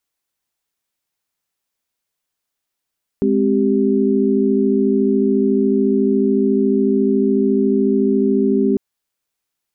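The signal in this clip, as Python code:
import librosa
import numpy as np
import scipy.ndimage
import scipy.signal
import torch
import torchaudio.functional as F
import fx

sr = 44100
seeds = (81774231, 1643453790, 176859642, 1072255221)

y = fx.chord(sr, length_s=5.55, notes=(56, 60, 67), wave='sine', level_db=-17.0)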